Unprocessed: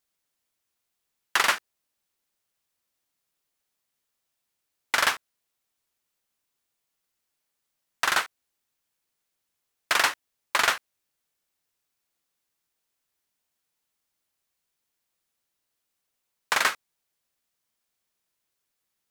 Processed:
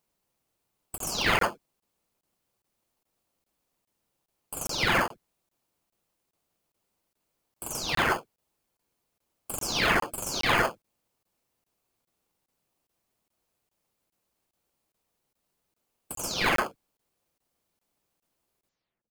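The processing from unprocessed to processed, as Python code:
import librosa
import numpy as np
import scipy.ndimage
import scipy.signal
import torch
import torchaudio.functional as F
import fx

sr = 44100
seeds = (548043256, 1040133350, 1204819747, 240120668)

p1 = fx.spec_delay(x, sr, highs='early', ms=412)
p2 = fx.sample_hold(p1, sr, seeds[0], rate_hz=1900.0, jitter_pct=0)
p3 = p1 + (p2 * 10.0 ** (-4.0 / 20.0))
y = fx.buffer_crackle(p3, sr, first_s=0.98, period_s=0.41, block=1024, kind='zero')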